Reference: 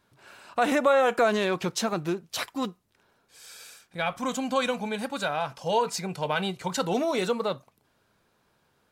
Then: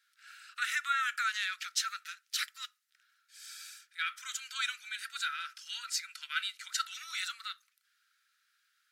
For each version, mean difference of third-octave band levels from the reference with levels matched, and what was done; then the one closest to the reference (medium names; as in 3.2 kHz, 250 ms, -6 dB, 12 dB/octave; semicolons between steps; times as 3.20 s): 16.0 dB: rippled Chebyshev high-pass 1.3 kHz, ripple 3 dB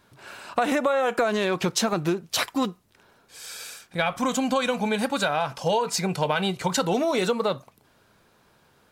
3.0 dB: compression 6:1, threshold -28 dBFS, peak gain reduction 11 dB; trim +8 dB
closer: second